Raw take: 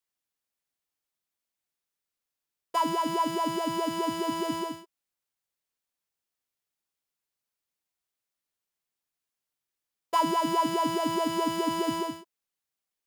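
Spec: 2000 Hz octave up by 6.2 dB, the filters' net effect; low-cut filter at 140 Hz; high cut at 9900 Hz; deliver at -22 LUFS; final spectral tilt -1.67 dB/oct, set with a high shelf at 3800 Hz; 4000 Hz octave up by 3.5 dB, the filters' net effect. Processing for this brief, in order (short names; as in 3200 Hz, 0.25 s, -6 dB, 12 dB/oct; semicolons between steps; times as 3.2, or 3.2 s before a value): HPF 140 Hz; LPF 9900 Hz; bell 2000 Hz +7.5 dB; high shelf 3800 Hz -3.5 dB; bell 4000 Hz +3.5 dB; gain +5.5 dB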